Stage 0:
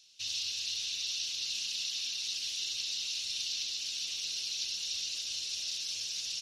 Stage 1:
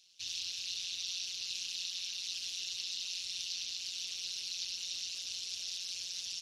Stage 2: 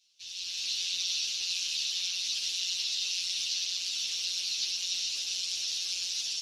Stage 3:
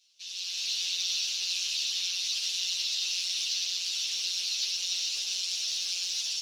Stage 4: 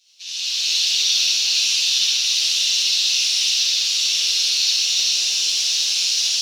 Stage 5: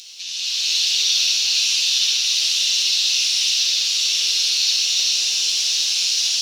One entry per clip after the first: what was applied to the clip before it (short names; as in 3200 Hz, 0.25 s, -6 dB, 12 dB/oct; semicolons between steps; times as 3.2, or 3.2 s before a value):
AM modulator 180 Hz, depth 75%
low shelf 300 Hz -7.5 dB; AGC gain up to 12 dB; ensemble effect; gain -1.5 dB
steep high-pass 320 Hz 96 dB/oct; in parallel at -9.5 dB: soft clip -35 dBFS, distortion -9 dB
reverb RT60 0.70 s, pre-delay 46 ms, DRR -4.5 dB; gain +6.5 dB
notch 600 Hz, Q 17; upward compressor, threshold -26 dBFS